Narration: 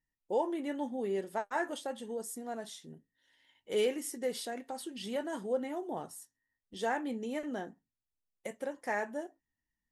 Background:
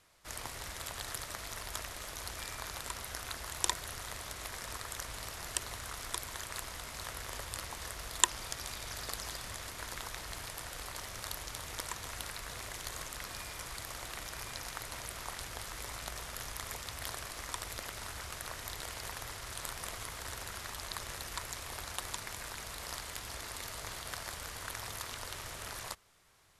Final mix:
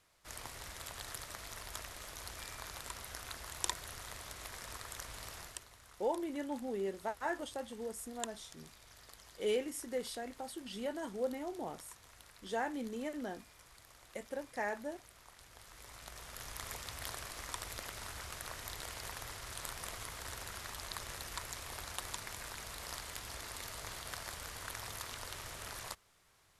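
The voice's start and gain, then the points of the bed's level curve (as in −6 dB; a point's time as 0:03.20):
5.70 s, −3.5 dB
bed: 0:05.39 −4.5 dB
0:05.69 −16.5 dB
0:15.34 −16.5 dB
0:16.64 −2.5 dB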